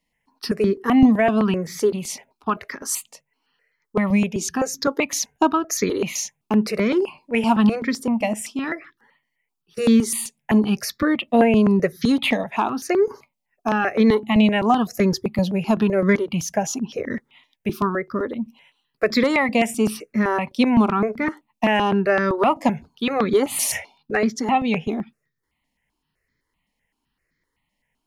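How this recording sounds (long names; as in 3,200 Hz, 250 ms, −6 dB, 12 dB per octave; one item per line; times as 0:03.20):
notches that jump at a steady rate 7.8 Hz 390–2,800 Hz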